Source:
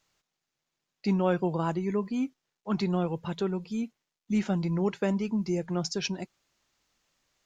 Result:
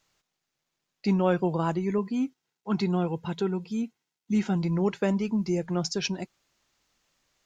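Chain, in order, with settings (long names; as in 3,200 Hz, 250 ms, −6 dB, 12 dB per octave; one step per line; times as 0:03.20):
0:01.98–0:04.56: notch comb filter 590 Hz
level +2 dB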